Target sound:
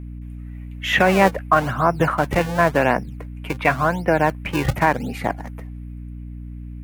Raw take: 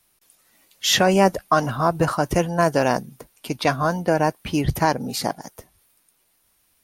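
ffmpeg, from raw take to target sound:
ffmpeg -i in.wav -filter_complex "[0:a]highshelf=frequency=3300:width_type=q:width=3:gain=-13,acrossover=split=300[link_01][link_02];[link_01]acrusher=samples=38:mix=1:aa=0.000001:lfo=1:lforange=60.8:lforate=0.92[link_03];[link_03][link_02]amix=inputs=2:normalize=0,aeval=exprs='val(0)+0.0224*(sin(2*PI*60*n/s)+sin(2*PI*2*60*n/s)/2+sin(2*PI*3*60*n/s)/3+sin(2*PI*4*60*n/s)/4+sin(2*PI*5*60*n/s)/5)':channel_layout=same,volume=1dB" out.wav

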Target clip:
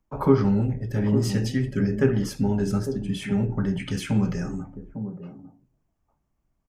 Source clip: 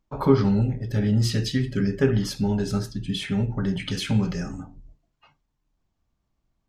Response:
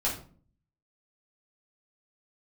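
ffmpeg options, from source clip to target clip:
-filter_complex "[0:a]equalizer=frequency=3900:width_type=o:width=0.71:gain=-11,acrossover=split=110|940|2300[link_01][link_02][link_03][link_04];[link_01]aeval=exprs='0.0355*(abs(mod(val(0)/0.0355+3,4)-2)-1)':channel_layout=same[link_05];[link_02]aecho=1:1:853:0.398[link_06];[link_05][link_06][link_03][link_04]amix=inputs=4:normalize=0"

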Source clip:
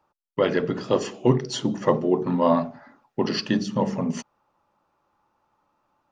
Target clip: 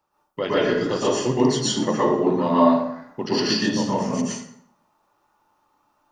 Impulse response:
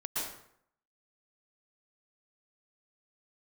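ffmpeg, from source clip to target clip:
-filter_complex "[0:a]highshelf=frequency=3800:gain=10.5[link_01];[1:a]atrim=start_sample=2205[link_02];[link_01][link_02]afir=irnorm=-1:irlink=0,volume=-2dB"

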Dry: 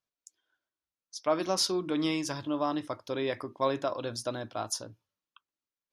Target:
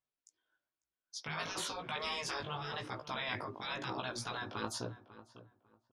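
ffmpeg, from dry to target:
ffmpeg -i in.wav -filter_complex "[0:a]afftfilt=real='re*lt(hypot(re,im),0.0447)':imag='im*lt(hypot(re,im),0.0447)':win_size=1024:overlap=0.75,agate=range=-8dB:threshold=-52dB:ratio=16:detection=peak,aemphasis=mode=reproduction:type=50fm,flanger=delay=15.5:depth=4:speed=1,asplit=2[link_01][link_02];[link_02]adelay=547,lowpass=frequency=1600:poles=1,volume=-15dB,asplit=2[link_03][link_04];[link_04]adelay=547,lowpass=frequency=1600:poles=1,volume=0.24,asplit=2[link_05][link_06];[link_06]adelay=547,lowpass=frequency=1600:poles=1,volume=0.24[link_07];[link_01][link_03][link_05][link_07]amix=inputs=4:normalize=0,volume=8dB" out.wav

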